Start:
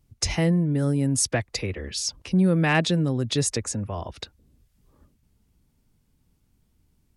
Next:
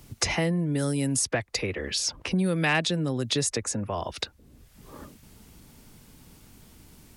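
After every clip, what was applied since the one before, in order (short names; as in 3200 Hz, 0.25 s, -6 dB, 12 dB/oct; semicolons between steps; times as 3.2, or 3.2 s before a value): low shelf 290 Hz -7 dB; three-band squash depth 70%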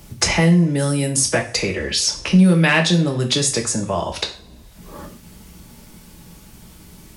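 two-slope reverb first 0.38 s, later 2.2 s, from -27 dB, DRR 2 dB; gain +6.5 dB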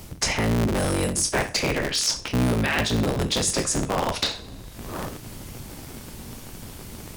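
cycle switcher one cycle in 3, inverted; reverse; compressor 6:1, threshold -25 dBFS, peak gain reduction 15 dB; reverse; gain +4 dB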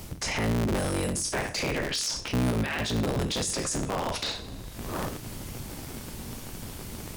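limiter -20.5 dBFS, peak gain reduction 10.5 dB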